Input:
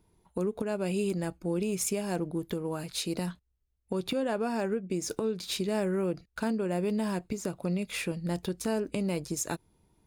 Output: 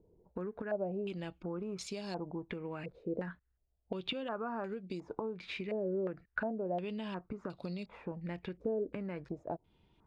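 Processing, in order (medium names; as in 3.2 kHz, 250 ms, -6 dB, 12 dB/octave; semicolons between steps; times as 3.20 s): compression 2.5:1, threshold -39 dBFS, peak gain reduction 9.5 dB; step-sequenced low-pass 2.8 Hz 500–4200 Hz; trim -2 dB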